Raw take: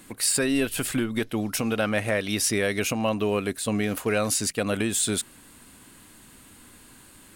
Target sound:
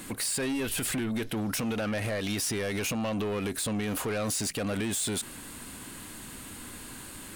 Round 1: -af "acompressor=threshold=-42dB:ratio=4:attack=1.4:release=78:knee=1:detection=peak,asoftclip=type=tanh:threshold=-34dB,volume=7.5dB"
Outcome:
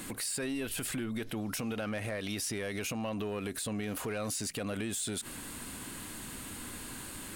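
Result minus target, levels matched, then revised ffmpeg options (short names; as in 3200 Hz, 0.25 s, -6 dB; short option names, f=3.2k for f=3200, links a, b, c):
compressor: peak gain reduction +8 dB
-af "acompressor=threshold=-31dB:ratio=4:attack=1.4:release=78:knee=1:detection=peak,asoftclip=type=tanh:threshold=-34dB,volume=7.5dB"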